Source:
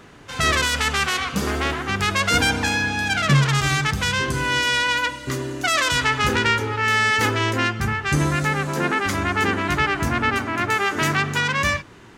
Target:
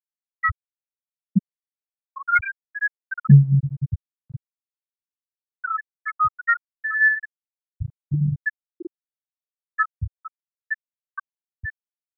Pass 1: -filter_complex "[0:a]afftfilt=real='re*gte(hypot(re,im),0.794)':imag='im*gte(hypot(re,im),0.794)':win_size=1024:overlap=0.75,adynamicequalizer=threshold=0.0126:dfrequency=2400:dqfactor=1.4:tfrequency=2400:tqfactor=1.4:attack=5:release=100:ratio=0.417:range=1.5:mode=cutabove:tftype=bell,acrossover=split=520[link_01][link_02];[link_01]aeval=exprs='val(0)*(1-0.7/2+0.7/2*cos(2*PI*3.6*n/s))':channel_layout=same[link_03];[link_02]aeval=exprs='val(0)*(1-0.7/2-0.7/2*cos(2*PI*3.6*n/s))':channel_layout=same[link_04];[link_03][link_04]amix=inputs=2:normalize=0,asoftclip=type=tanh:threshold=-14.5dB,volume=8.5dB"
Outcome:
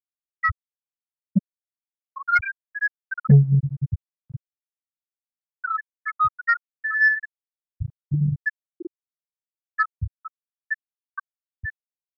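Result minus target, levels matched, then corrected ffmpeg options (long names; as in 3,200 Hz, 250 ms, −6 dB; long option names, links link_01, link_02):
soft clipping: distortion +16 dB
-filter_complex "[0:a]afftfilt=real='re*gte(hypot(re,im),0.794)':imag='im*gte(hypot(re,im),0.794)':win_size=1024:overlap=0.75,adynamicequalizer=threshold=0.0126:dfrequency=2400:dqfactor=1.4:tfrequency=2400:tqfactor=1.4:attack=5:release=100:ratio=0.417:range=1.5:mode=cutabove:tftype=bell,acrossover=split=520[link_01][link_02];[link_01]aeval=exprs='val(0)*(1-0.7/2+0.7/2*cos(2*PI*3.6*n/s))':channel_layout=same[link_03];[link_02]aeval=exprs='val(0)*(1-0.7/2-0.7/2*cos(2*PI*3.6*n/s))':channel_layout=same[link_04];[link_03][link_04]amix=inputs=2:normalize=0,asoftclip=type=tanh:threshold=-5dB,volume=8.5dB"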